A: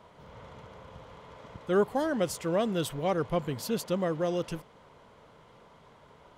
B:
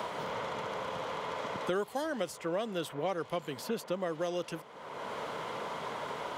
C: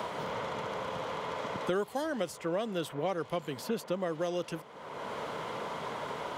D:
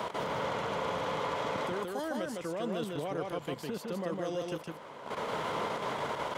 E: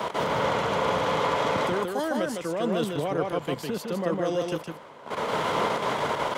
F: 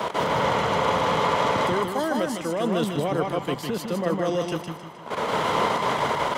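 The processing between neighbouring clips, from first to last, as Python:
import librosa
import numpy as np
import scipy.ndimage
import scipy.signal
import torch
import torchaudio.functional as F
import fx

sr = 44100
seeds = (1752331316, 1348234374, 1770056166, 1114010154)

y1 = fx.highpass(x, sr, hz=420.0, slope=6)
y1 = fx.band_squash(y1, sr, depth_pct=100)
y1 = F.gain(torch.from_numpy(y1), -2.0).numpy()
y2 = fx.low_shelf(y1, sr, hz=320.0, db=3.5)
y3 = fx.level_steps(y2, sr, step_db=13)
y3 = y3 + 10.0 ** (-3.0 / 20.0) * np.pad(y3, (int(156 * sr / 1000.0), 0))[:len(y3)]
y3 = F.gain(torch.from_numpy(y3), 3.5).numpy()
y4 = fx.band_widen(y3, sr, depth_pct=70)
y4 = F.gain(torch.from_numpy(y4), 8.5).numpy()
y5 = fx.echo_feedback(y4, sr, ms=155, feedback_pct=49, wet_db=-10.5)
y5 = F.gain(torch.from_numpy(y5), 2.5).numpy()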